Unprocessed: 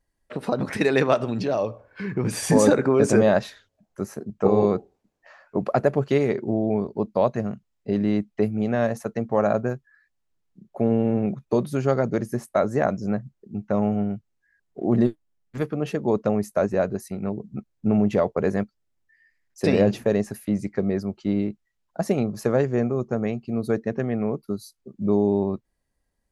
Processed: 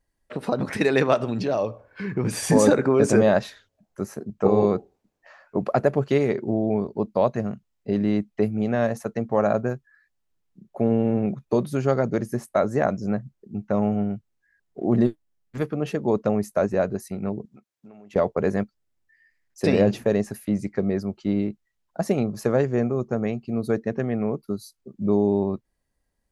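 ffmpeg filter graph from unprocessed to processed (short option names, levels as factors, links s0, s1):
-filter_complex "[0:a]asettb=1/sr,asplit=3[s0][s1][s2];[s0]atrim=end=17.454[s3];[s1]atrim=start=17.45:end=18.16,asetpts=PTS-STARTPTS,afade=t=in:d=0.004:c=qsin,afade=t=out:st=0.706:d=0.004:c=qsin,highpass=f=910:p=1,acompressor=threshold=0.00562:ratio=5:attack=3.2:release=140:knee=1:detection=peak[s4];[s2]atrim=start=18.156[s5];[s3][s4]acrossfade=d=0.004:c1=hsin:c2=qsin[s6];[s6][s5]acrossfade=d=0.004:c1=qsin:c2=hsin"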